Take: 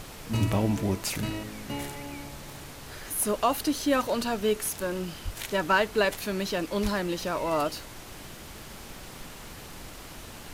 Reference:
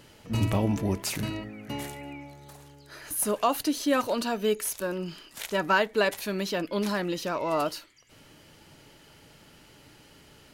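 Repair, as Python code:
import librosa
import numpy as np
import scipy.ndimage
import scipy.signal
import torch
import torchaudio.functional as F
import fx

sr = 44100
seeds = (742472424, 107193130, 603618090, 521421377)

y = fx.fix_declick_ar(x, sr, threshold=6.5)
y = fx.fix_deplosive(y, sr, at_s=(5.24, 6.82))
y = fx.noise_reduce(y, sr, print_start_s=8.0, print_end_s=8.5, reduce_db=11.0)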